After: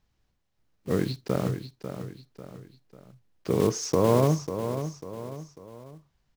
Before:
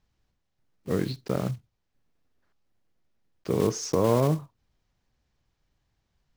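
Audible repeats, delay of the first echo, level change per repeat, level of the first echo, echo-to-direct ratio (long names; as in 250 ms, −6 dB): 3, 545 ms, −7.5 dB, −9.5 dB, −8.5 dB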